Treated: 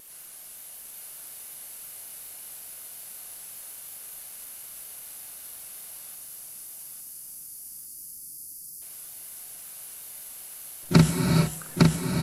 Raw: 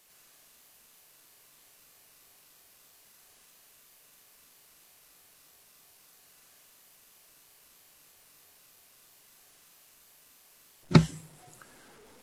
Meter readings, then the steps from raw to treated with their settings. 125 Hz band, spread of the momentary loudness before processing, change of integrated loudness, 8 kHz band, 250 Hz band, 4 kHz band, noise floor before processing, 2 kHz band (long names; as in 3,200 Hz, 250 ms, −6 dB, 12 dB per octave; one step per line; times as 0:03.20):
+6.5 dB, 8 LU, −5.5 dB, +16.5 dB, +6.5 dB, +8.0 dB, −60 dBFS, +7.0 dB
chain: time-frequency box erased 0:06.15–0:08.82, 370–4,500 Hz
parametric band 11,000 Hz +14 dB 0.56 octaves
double-tracking delay 44 ms −8 dB
pitch vibrato 5.4 Hz 57 cents
on a send: repeating echo 856 ms, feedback 35%, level −3.5 dB
on the sum: reverb whose tail is shaped and stops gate 480 ms rising, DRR 5.5 dB
boost into a limiter +10.5 dB
every ending faded ahead of time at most 210 dB per second
level −4 dB